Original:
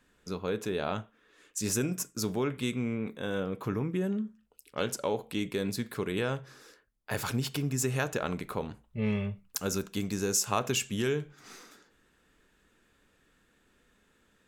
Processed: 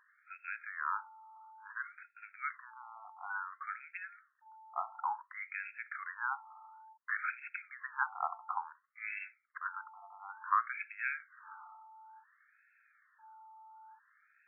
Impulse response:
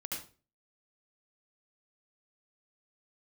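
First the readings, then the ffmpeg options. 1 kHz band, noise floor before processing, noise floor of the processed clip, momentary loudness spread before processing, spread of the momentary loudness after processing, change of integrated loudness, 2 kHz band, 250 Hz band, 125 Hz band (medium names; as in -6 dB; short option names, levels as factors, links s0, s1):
+1.5 dB, -69 dBFS, -73 dBFS, 10 LU, 19 LU, -7.5 dB, +1.0 dB, under -40 dB, under -40 dB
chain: -af "aeval=exprs='val(0)+0.00141*sin(2*PI*880*n/s)':c=same,afftfilt=real='re*between(b*sr/1024,950*pow(1900/950,0.5+0.5*sin(2*PI*0.57*pts/sr))/1.41,950*pow(1900/950,0.5+0.5*sin(2*PI*0.57*pts/sr))*1.41)':imag='im*between(b*sr/1024,950*pow(1900/950,0.5+0.5*sin(2*PI*0.57*pts/sr))/1.41,950*pow(1900/950,0.5+0.5*sin(2*PI*0.57*pts/sr))*1.41)':win_size=1024:overlap=0.75,volume=1.58"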